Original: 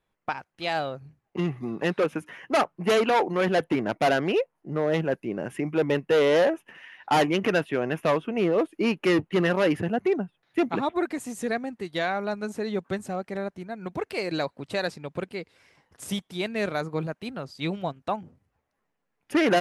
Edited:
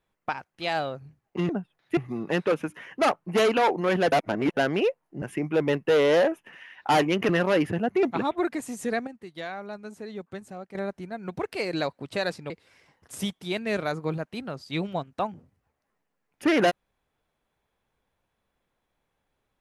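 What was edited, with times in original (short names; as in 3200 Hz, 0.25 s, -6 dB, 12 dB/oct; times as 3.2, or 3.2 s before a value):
3.64–4.09 reverse
4.74–5.44 cut
7.51–9.39 cut
10.13–10.61 move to 1.49
11.65–13.33 gain -8.5 dB
15.08–15.39 cut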